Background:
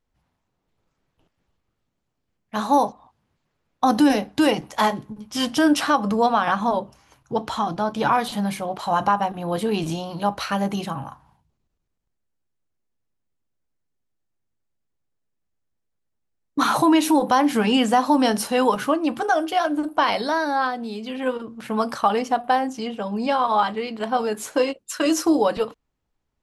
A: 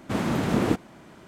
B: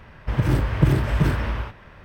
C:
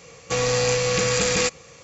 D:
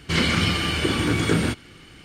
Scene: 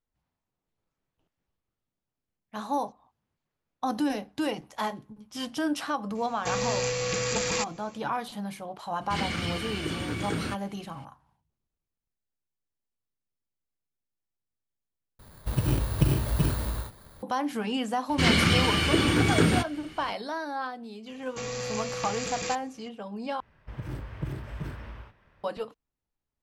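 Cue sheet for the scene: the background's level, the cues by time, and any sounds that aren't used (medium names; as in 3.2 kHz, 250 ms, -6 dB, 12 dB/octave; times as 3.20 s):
background -11 dB
6.15 s: add C -7.5 dB
9.01 s: add D -10.5 dB
15.19 s: replace with B -5.5 dB + bit-reversed sample order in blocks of 16 samples
18.09 s: add D -1 dB
21.06 s: add C -12.5 dB
23.40 s: replace with B -16.5 dB
not used: A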